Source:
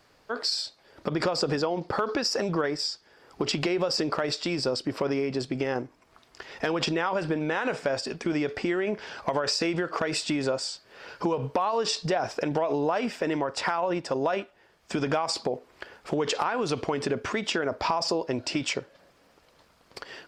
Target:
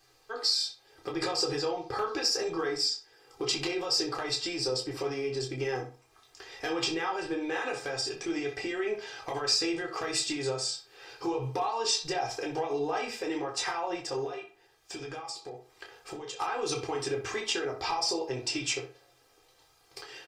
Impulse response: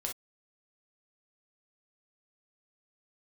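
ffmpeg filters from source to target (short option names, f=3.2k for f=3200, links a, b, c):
-filter_complex "[0:a]highshelf=f=3.3k:g=11.5,aecho=1:1:2.5:0.69,asettb=1/sr,asplit=3[a][b][c];[a]atrim=end=14.244[d];[b]atrim=start=14.24:end=16.4,asetpts=PTS-STARTPTS,afade=t=in:d=0.004:c=qsin,afade=t=out:st=2.156:d=0.004:c=qsin,acompressor=threshold=-30dB:ratio=5[e];[c]atrim=start=16.396[f];[d][e]acrossfade=d=0.004:c1=hsin:c2=qsin[g];[g][f]acrossfade=d=0.004:c1=qsin:c2=hsin,asplit=2[h][i];[i]adelay=62,lowpass=f=2.5k:p=1,volume=-8dB,asplit=2[j][k];[k]adelay=62,lowpass=f=2.5k:p=1,volume=0.3,asplit=2[l][m];[m]adelay=62,lowpass=f=2.5k:p=1,volume=0.3,asplit=2[n][o];[o]adelay=62,lowpass=f=2.5k:p=1,volume=0.3[p];[h][j][l][n][p]amix=inputs=5:normalize=0[q];[1:a]atrim=start_sample=2205,asetrate=79380,aresample=44100[r];[q][r]afir=irnorm=-1:irlink=0,volume=-4dB"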